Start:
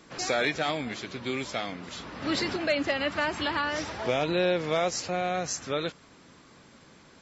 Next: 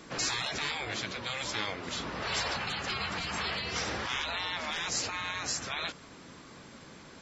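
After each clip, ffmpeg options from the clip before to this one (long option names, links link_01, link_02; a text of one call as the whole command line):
ffmpeg -i in.wav -af "afftfilt=real='re*lt(hypot(re,im),0.0631)':imag='im*lt(hypot(re,im),0.0631)':win_size=1024:overlap=0.75,volume=4dB" out.wav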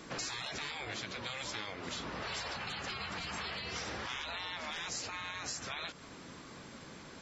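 ffmpeg -i in.wav -af "acompressor=threshold=-38dB:ratio=4" out.wav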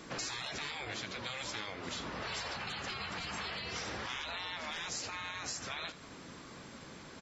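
ffmpeg -i in.wav -af "aecho=1:1:80:0.158" out.wav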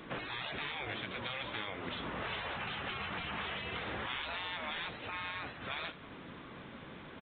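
ffmpeg -i in.wav -af "aresample=8000,aresample=44100,volume=1.5dB" out.wav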